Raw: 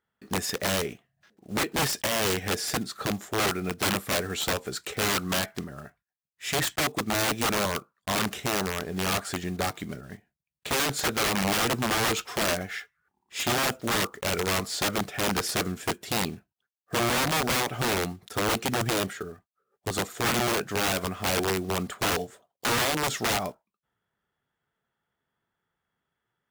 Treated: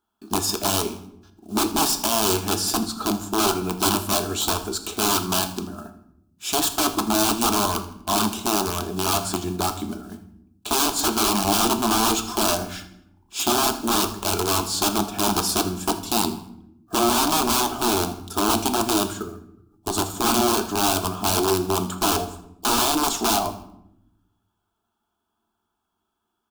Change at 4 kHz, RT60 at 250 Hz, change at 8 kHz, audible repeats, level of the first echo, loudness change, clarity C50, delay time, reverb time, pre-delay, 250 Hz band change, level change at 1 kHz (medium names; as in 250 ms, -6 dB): +5.0 dB, 1.3 s, +7.5 dB, 1, -18.0 dB, +5.5 dB, 11.5 dB, 81 ms, 0.80 s, 3 ms, +7.0 dB, +7.0 dB